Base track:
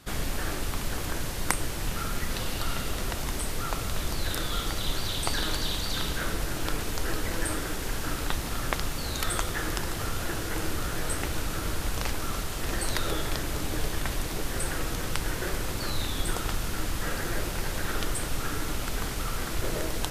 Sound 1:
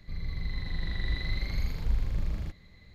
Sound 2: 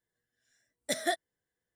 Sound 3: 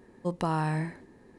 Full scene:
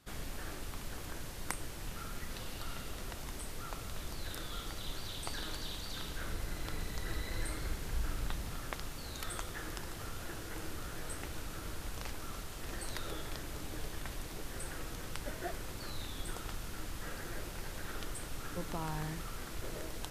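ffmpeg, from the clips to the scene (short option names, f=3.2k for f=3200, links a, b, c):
-filter_complex "[0:a]volume=-12dB[a];[2:a]lowpass=1.3k[b];[1:a]atrim=end=2.94,asetpts=PTS-STARTPTS,volume=-9.5dB,afade=t=in:d=0.004:c=hsin,afade=t=out:st=2.936:d=0.004:c=hsin,adelay=6070[c];[b]atrim=end=1.75,asetpts=PTS-STARTPTS,volume=-11.5dB,afade=t=in:d=0.004:c=hsin,afade=t=out:st=1.746:d=0.004:c=hsin,adelay=14370[d];[3:a]atrim=end=1.38,asetpts=PTS-STARTPTS,volume=-11.5dB,afade=t=in:d=0.004:c=hsin,afade=t=out:st=1.376:d=0.004:c=hsin,adelay=18310[e];[a][c][d][e]amix=inputs=4:normalize=0"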